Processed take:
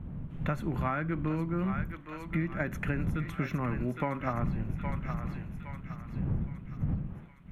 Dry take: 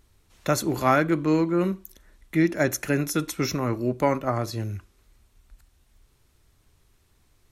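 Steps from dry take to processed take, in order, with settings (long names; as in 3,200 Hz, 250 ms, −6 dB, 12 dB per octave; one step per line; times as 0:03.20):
wind on the microphone 130 Hz −29 dBFS
drawn EQ curve 110 Hz 0 dB, 160 Hz +8 dB, 370 Hz −4 dB, 550 Hz −3 dB, 1,300 Hz +3 dB, 2,100 Hz +2 dB, 3,100 Hz −1 dB, 4,900 Hz −21 dB, 12,000 Hz −16 dB
on a send: feedback echo with a high-pass in the loop 814 ms, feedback 53%, high-pass 1,100 Hz, level −8 dB
on the sum: downward compressor 10 to 1, threshold −24 dBFS, peak gain reduction 11.5 dB
level −3 dB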